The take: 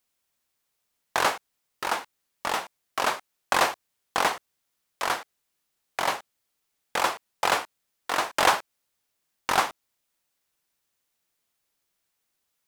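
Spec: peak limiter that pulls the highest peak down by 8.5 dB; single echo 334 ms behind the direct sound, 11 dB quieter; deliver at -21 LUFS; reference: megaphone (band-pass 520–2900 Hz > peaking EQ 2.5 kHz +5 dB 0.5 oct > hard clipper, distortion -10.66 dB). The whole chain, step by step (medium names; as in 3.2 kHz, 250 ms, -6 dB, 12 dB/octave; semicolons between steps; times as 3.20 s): peak limiter -12.5 dBFS; band-pass 520–2900 Hz; peaking EQ 2.5 kHz +5 dB 0.5 oct; delay 334 ms -11 dB; hard clipper -22.5 dBFS; trim +11.5 dB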